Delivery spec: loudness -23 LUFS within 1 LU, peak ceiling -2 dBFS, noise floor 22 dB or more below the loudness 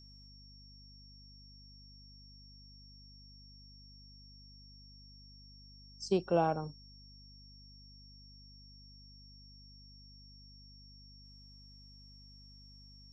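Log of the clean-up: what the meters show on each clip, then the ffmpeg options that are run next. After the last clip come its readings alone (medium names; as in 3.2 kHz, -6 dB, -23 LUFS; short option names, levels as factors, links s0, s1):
hum 50 Hz; highest harmonic 250 Hz; hum level -56 dBFS; steady tone 5.5 kHz; tone level -57 dBFS; loudness -33.5 LUFS; peak level -17.5 dBFS; loudness target -23.0 LUFS
-> -af "bandreject=f=50:t=h:w=6,bandreject=f=100:t=h:w=6,bandreject=f=150:t=h:w=6,bandreject=f=200:t=h:w=6,bandreject=f=250:t=h:w=6"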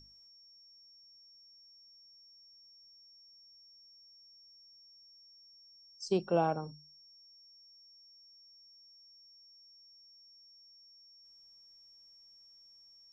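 hum not found; steady tone 5.5 kHz; tone level -57 dBFS
-> -af "bandreject=f=5500:w=30"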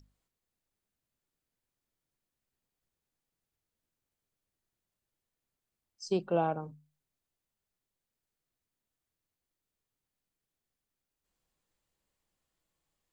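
steady tone not found; loudness -32.5 LUFS; peak level -17.5 dBFS; loudness target -23.0 LUFS
-> -af "volume=2.99"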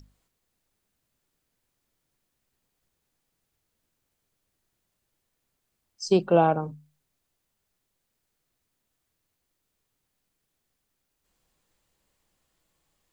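loudness -23.0 LUFS; peak level -8.0 dBFS; noise floor -80 dBFS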